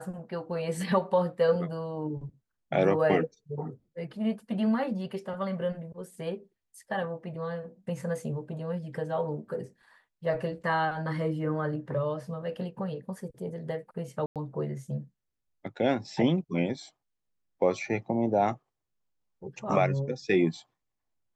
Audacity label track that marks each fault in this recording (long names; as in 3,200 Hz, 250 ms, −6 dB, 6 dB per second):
14.260000	14.360000	drop-out 97 ms